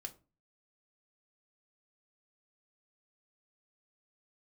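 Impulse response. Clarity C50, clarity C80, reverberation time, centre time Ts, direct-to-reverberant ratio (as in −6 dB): 17.5 dB, 23.0 dB, 0.30 s, 6 ms, 2.5 dB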